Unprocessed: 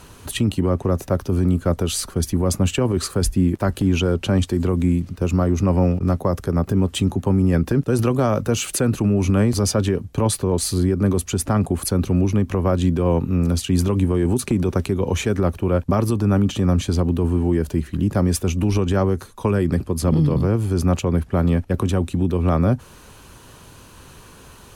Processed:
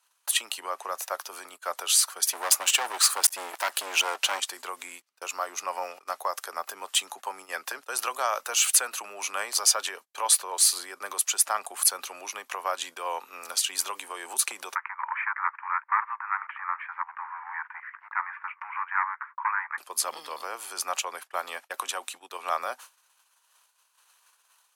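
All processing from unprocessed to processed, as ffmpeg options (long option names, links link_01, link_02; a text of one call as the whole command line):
ffmpeg -i in.wav -filter_complex "[0:a]asettb=1/sr,asplit=3[link_01][link_02][link_03];[link_01]atrim=end=2.274[link_04];[link_02]atrim=start=2.27:end=4.4,asetpts=PTS-STARTPTS,afade=type=in:duration=0.004:curve=qsin,afade=type=out:start_time=2.126:duration=0.004:curve=qsin,acontrast=27,aeval=exprs='clip(val(0),-1,0.0841)':channel_layout=same[link_05];[link_03]atrim=start=4.396[link_06];[link_04][link_05]acrossfade=duration=0.004:curve1=hsin:curve2=qsin[link_07];[link_07][link_06]acrossfade=duration=0.004:curve1=qsin:curve2=hsin,asettb=1/sr,asplit=3[link_08][link_09][link_10];[link_08]atrim=end=14.754[link_11];[link_09]atrim=start=14.75:end=19.78,asetpts=PTS-STARTPTS,afade=type=in:duration=0.004:curve=qsin,afade=type=out:start_time=5.026:duration=0.004:curve=qsin,acontrast=59,volume=8.5dB,asoftclip=hard,volume=-8.5dB,asuperpass=centerf=1400:order=12:qfactor=1.1[link_12];[link_10]atrim=start=19.776[link_13];[link_11][link_12]acrossfade=duration=0.004:curve1=hsin:curve2=qsin[link_14];[link_14][link_13]acrossfade=duration=0.004:curve1=qsin:curve2=hsin,highpass=frequency=810:width=0.5412,highpass=frequency=810:width=1.3066,agate=range=-27dB:threshold=-45dB:ratio=16:detection=peak,highshelf=frequency=4400:gain=6" out.wav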